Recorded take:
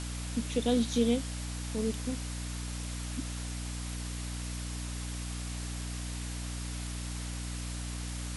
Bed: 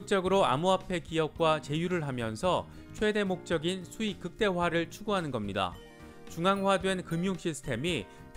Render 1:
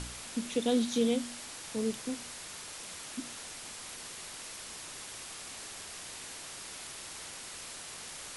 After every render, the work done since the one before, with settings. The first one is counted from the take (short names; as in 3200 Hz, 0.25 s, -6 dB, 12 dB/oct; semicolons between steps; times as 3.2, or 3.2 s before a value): de-hum 60 Hz, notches 5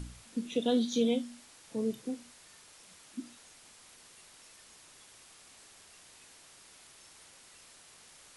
noise print and reduce 12 dB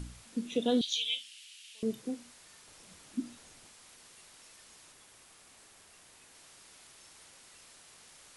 0.81–1.83 resonant high-pass 2900 Hz, resonance Q 4.5; 2.67–3.67 low shelf 420 Hz +8 dB; 4.92–6.35 bell 4900 Hz -3 dB 2.1 oct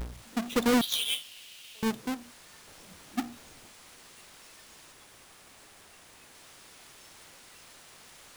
half-waves squared off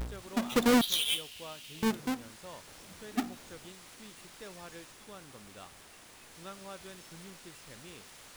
add bed -20 dB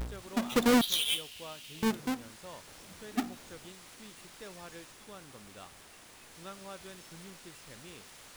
nothing audible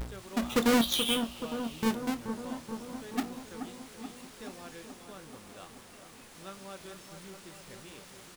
doubler 26 ms -12 dB; analogue delay 0.429 s, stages 4096, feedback 69%, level -8 dB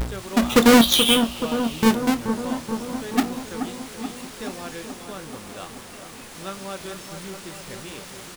gain +11.5 dB